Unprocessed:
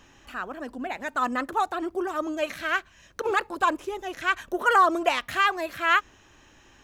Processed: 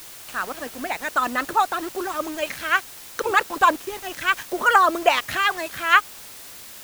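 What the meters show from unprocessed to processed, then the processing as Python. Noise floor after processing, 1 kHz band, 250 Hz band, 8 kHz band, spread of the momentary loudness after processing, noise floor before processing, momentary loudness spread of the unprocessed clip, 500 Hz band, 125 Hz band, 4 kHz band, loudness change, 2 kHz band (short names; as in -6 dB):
-41 dBFS, +4.0 dB, -0.5 dB, +10.0 dB, 14 LU, -56 dBFS, 13 LU, +2.0 dB, n/a, +5.5 dB, +4.0 dB, +5.0 dB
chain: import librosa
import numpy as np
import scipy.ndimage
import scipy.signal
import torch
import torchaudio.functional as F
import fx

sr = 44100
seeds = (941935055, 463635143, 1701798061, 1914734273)

y = fx.hpss(x, sr, part='percussive', gain_db=8)
y = np.where(np.abs(y) >= 10.0 ** (-35.0 / 20.0), y, 0.0)
y = fx.dmg_noise_colour(y, sr, seeds[0], colour='white', level_db=-40.0)
y = y * librosa.db_to_amplitude(-1.0)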